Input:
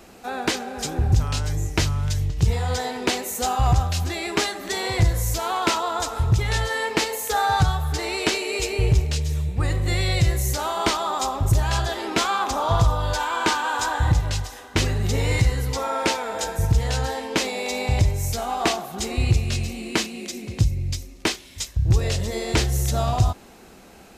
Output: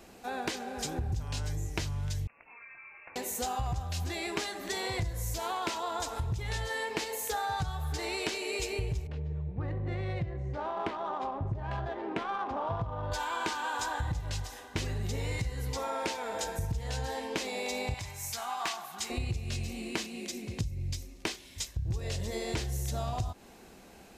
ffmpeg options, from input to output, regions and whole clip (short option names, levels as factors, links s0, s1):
-filter_complex "[0:a]asettb=1/sr,asplit=3[s0][s1][s2];[s0]atrim=end=2.274[s3];[s1]atrim=start=2.27:end=3.16,asetpts=PTS-STARTPTS,afade=t=in:d=0.004:c=qsin,afade=t=out:st=0.886:d=0.004:c=qsin,highpass=f=650:w=0.5412,highpass=f=650:w=1.3066,acompressor=threshold=0.00631:ratio=3:attack=3.2:release=140:knee=1:detection=peak,lowpass=f=2600:t=q:w=0.5098,lowpass=f=2600:t=q:w=0.6013,lowpass=f=2600:t=q:w=0.9,lowpass=f=2600:t=q:w=2.563,afreqshift=-3100[s4];[s2]atrim=start=3.156[s5];[s3][s4]acrossfade=d=0.004:c1=hsin:c2=qsin[s6];[s6][s5]acrossfade=d=0.004:c1=qsin:c2=hsin,asettb=1/sr,asplit=3[s7][s8][s9];[s7]atrim=end=9.074[s10];[s8]atrim=start=9.07:end=13.12,asetpts=PTS-STARTPTS,afade=t=in:d=0.004:c=qsin,afade=t=out:st=4.046:d=0.004:c=qsin,highpass=90,adynamicsmooth=sensitivity=1:basefreq=1300,aemphasis=mode=reproduction:type=75kf[s11];[s9]atrim=start=13.116[s12];[s10][s11]acrossfade=d=0.004:c1=hsin:c2=qsin[s13];[s13][s12]acrossfade=d=0.004:c1=qsin:c2=hsin,asettb=1/sr,asplit=3[s14][s15][s16];[s14]atrim=end=17.944[s17];[s15]atrim=start=17.94:end=19.1,asetpts=PTS-STARTPTS,afade=t=in:d=0.004:c=qsin,afade=t=out:st=1.156:d=0.004:c=qsin,highpass=89,lowshelf=f=710:t=q:w=1.5:g=-12,asoftclip=type=hard:threshold=0.2[s18];[s16]atrim=start=19.096[s19];[s17][s18]acrossfade=d=0.004:c1=hsin:c2=qsin[s20];[s20][s19]acrossfade=d=0.004:c1=qsin:c2=hsin,bandreject=f=1300:w=14,acompressor=threshold=0.0631:ratio=6,volume=0.501"